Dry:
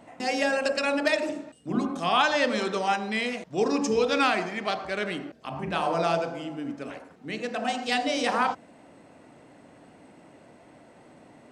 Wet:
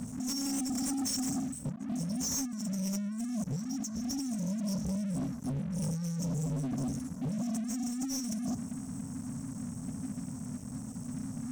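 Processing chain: FFT band-reject 270–5400 Hz; negative-ratio compressor -44 dBFS, ratio -1; sample leveller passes 5; gain -5 dB

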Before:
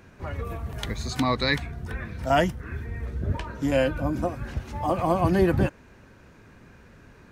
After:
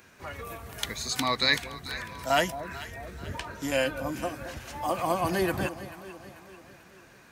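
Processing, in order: tilt +3 dB/oct; echo with dull and thin repeats by turns 0.22 s, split 830 Hz, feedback 69%, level -11.5 dB; 1.98–2.72 whine 990 Hz -42 dBFS; gain -2 dB

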